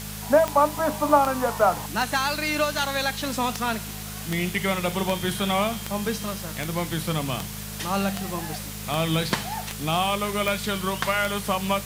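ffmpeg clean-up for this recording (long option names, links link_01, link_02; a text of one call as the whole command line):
ffmpeg -i in.wav -af "adeclick=threshold=4,bandreject=frequency=52.2:width_type=h:width=4,bandreject=frequency=104.4:width_type=h:width=4,bandreject=frequency=156.6:width_type=h:width=4,bandreject=frequency=208.8:width_type=h:width=4,bandreject=frequency=440:width=30,afwtdn=0.014" out.wav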